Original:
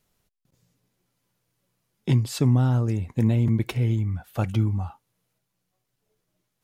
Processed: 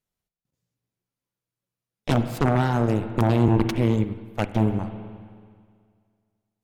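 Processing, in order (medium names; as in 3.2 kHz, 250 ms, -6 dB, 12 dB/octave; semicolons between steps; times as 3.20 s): Chebyshev shaper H 3 -18 dB, 6 -7 dB, 7 -24 dB, 8 -16 dB, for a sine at -10.5 dBFS; spring tank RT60 2 s, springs 42/54 ms, chirp 45 ms, DRR 8.5 dB; 4.04–4.62 s: upward expansion 1.5:1, over -30 dBFS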